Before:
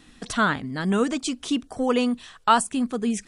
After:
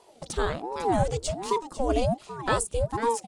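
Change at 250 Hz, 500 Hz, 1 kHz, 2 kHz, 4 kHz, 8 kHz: -9.5, +0.5, -3.0, -7.5, -7.0, -2.0 dB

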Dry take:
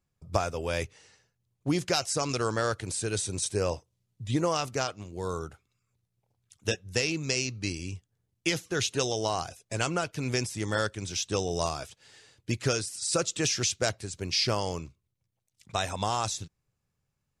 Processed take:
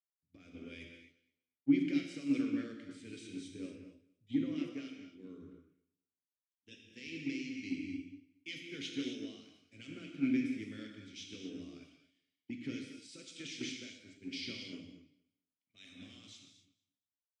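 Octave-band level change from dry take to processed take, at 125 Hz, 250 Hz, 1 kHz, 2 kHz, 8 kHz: -19.0 dB, -1.5 dB, under -30 dB, -13.5 dB, -24.0 dB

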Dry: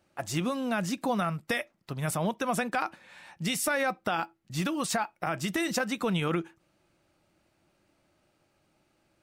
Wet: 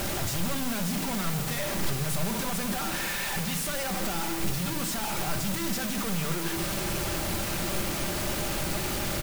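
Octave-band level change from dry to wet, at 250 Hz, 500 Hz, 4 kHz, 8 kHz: +1.0, -1.0, +6.0, +7.0 dB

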